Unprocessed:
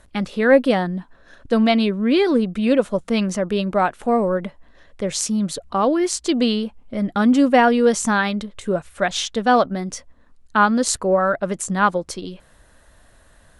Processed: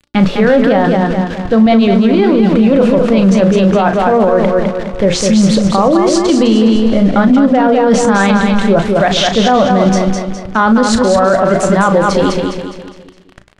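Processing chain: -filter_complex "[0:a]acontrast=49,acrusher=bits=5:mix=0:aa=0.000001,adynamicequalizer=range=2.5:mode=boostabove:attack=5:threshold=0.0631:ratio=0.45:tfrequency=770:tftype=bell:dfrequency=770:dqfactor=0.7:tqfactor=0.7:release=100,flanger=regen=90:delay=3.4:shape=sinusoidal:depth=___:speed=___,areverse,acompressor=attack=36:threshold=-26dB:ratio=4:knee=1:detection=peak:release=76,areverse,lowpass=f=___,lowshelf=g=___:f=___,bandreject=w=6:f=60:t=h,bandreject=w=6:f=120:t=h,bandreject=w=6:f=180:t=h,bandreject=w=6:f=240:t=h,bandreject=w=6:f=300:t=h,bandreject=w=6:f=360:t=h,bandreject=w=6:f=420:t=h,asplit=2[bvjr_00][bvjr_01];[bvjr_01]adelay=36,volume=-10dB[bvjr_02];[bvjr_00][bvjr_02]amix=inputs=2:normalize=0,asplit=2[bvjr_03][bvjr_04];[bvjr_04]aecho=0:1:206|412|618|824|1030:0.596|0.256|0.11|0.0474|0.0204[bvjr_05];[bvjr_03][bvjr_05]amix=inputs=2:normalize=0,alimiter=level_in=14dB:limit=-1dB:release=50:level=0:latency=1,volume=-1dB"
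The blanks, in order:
2, 0.42, 4.4k, 6, 470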